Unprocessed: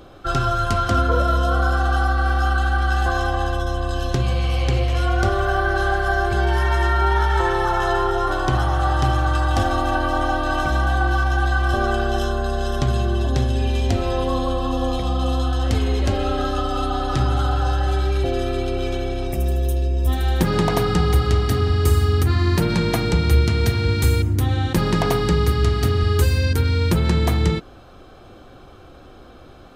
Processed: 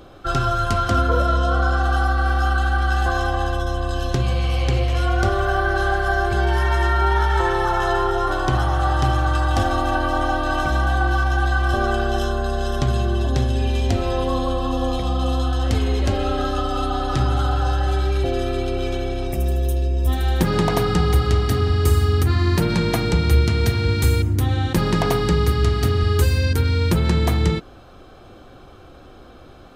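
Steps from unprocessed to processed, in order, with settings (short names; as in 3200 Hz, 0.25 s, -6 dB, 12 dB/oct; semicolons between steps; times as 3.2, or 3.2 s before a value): 1.27–1.83 LPF 8000 Hz 12 dB/oct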